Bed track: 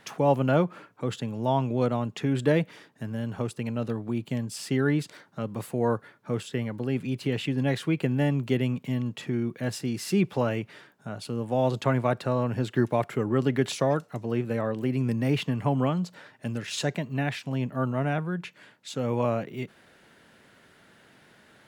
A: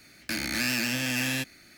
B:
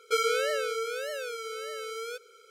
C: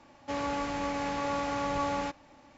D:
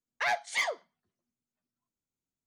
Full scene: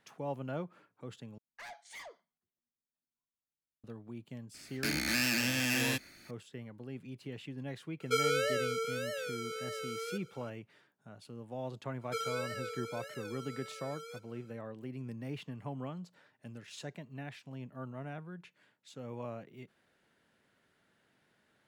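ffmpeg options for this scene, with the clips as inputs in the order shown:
-filter_complex "[2:a]asplit=2[a][b];[0:a]volume=-16dB[c];[4:a]asoftclip=type=tanh:threshold=-32dB[d];[b]aecho=1:1:6:0.72[e];[c]asplit=2[f][g];[f]atrim=end=1.384[h];[d]atrim=end=2.46,asetpts=PTS-STARTPTS,volume=-12.5dB[i];[g]atrim=start=3.836[j];[1:a]atrim=end=1.77,asetpts=PTS-STARTPTS,volume=-3dB,afade=t=in:d=0.004:c=hsin,afade=t=out:st=1.766:d=0.004:c=hsin,adelay=4540[k];[a]atrim=end=2.5,asetpts=PTS-STARTPTS,volume=-3.5dB,afade=t=in:d=0.004:c=hsin,afade=t=out:st=2.496:d=0.004:c=hsin,adelay=8000[l];[e]atrim=end=2.5,asetpts=PTS-STARTPTS,volume=-12.5dB,afade=t=in:d=0.004:c=hsin,afade=t=out:st=2.496:d=0.004:c=hsin,adelay=12010[m];[h][i]acrossfade=d=0.004:c1=hsin:c2=hsin[n];[n][j]acrossfade=d=0.004:c1=hsin:c2=hsin[o];[o][k][l][m]amix=inputs=4:normalize=0"

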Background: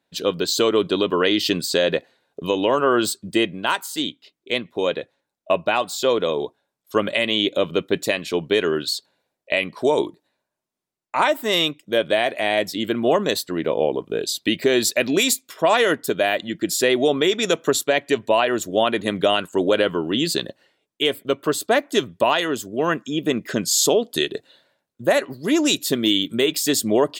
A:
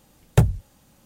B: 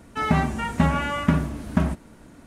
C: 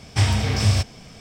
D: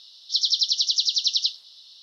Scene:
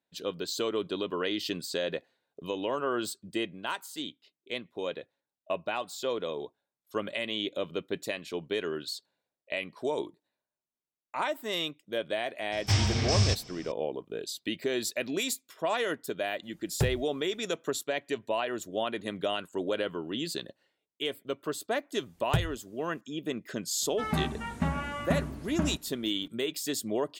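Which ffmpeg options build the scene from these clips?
-filter_complex "[1:a]asplit=2[a][b];[0:a]volume=-12.5dB[c];[3:a]lowpass=f=6.1k:t=q:w=2[d];[a]acrusher=bits=7:mode=log:mix=0:aa=0.000001[e];[d]atrim=end=1.2,asetpts=PTS-STARTPTS,volume=-7dB,afade=t=in:d=0.004:c=hsin,afade=t=out:st=1.196:d=0.004:c=hsin,adelay=552132S[f];[e]atrim=end=1.05,asetpts=PTS-STARTPTS,volume=-12dB,afade=t=in:d=0.004:c=hsin,afade=t=out:st=1.046:d=0.004:c=hsin,adelay=16430[g];[b]atrim=end=1.05,asetpts=PTS-STARTPTS,volume=-11.5dB,afade=t=in:d=0.004:c=hsin,afade=t=out:st=1.046:d=0.004:c=hsin,adelay=968436S[h];[2:a]atrim=end=2.46,asetpts=PTS-STARTPTS,volume=-9.5dB,afade=t=in:d=0.004:c=hsin,afade=t=out:st=2.456:d=0.004:c=hsin,adelay=23820[i];[c][f][g][h][i]amix=inputs=5:normalize=0"

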